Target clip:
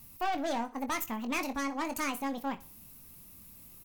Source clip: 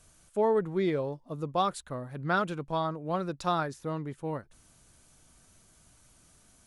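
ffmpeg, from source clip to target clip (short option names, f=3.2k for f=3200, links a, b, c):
-filter_complex "[0:a]equalizer=f=125:t=o:w=1:g=4,equalizer=f=250:t=o:w=1:g=-9,equalizer=f=1k:t=o:w=1:g=-6,equalizer=f=8k:t=o:w=1:g=9,aeval=exprs='(tanh(44.7*val(0)+0.3)-tanh(0.3))/44.7':c=same,asplit=2[a][b];[b]adelay=38,volume=-9.5dB[c];[a][c]amix=inputs=2:normalize=0,aecho=1:1:105|210|315:0.126|0.0453|0.0163,asetrate=76440,aresample=44100,volume=4dB"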